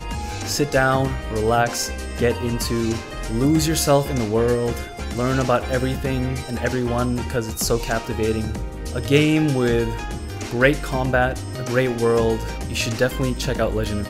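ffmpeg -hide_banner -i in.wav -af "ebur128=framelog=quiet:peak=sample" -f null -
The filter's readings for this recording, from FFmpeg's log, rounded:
Integrated loudness:
  I:         -21.5 LUFS
  Threshold: -31.5 LUFS
Loudness range:
  LRA:         2.1 LU
  Threshold: -41.5 LUFS
  LRA low:   -22.8 LUFS
  LRA high:  -20.7 LUFS
Sample peak:
  Peak:       -2.0 dBFS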